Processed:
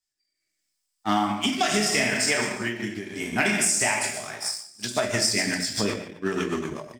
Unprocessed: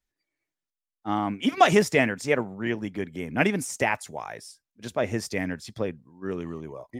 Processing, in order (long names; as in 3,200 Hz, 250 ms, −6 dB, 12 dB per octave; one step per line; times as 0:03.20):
delay that plays each chunk backwards 146 ms, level −13 dB
reverb whose tail is shaped and stops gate 270 ms falling, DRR −1.5 dB
transient designer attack −1 dB, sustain −5 dB
thirty-one-band graphic EQ 500 Hz −11 dB, 5,000 Hz +10 dB, 8,000 Hz +10 dB, 12,500 Hz −3 dB
leveller curve on the samples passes 1
spectral tilt +2 dB per octave
on a send: single-tap delay 146 ms −18 dB
on the sum: rotating-speaker cabinet horn 0.75 Hz, later 8 Hz, at 0:04.27
automatic gain control gain up to 10 dB
hum removal 86.46 Hz, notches 8
downward compressor 6 to 1, threshold −18 dBFS, peak gain reduction 8.5 dB
every ending faded ahead of time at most 100 dB per second
level −1.5 dB